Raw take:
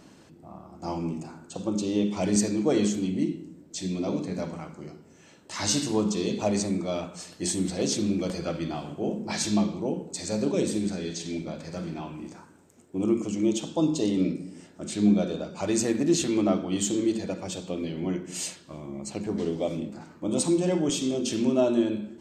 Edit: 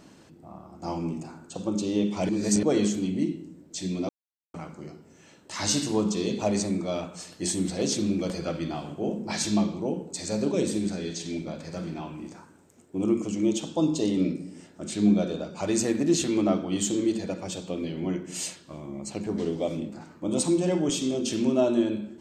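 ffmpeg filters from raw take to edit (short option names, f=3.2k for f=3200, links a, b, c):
-filter_complex "[0:a]asplit=5[a][b][c][d][e];[a]atrim=end=2.292[f];[b]atrim=start=2.288:end=2.632,asetpts=PTS-STARTPTS,areverse[g];[c]atrim=start=2.628:end=4.09,asetpts=PTS-STARTPTS,afade=t=out:st=1.458:d=0.004:c=hsin[h];[d]atrim=start=4.09:end=4.54,asetpts=PTS-STARTPTS,volume=0[i];[e]atrim=start=4.54,asetpts=PTS-STARTPTS,afade=t=in:d=0.004:c=hsin[j];[f][g]acrossfade=d=0.004:c1=hsin:c2=hsin[k];[h][i][j]concat=n=3:v=0:a=1[l];[k][l]acrossfade=d=0.004:c1=hsin:c2=hsin"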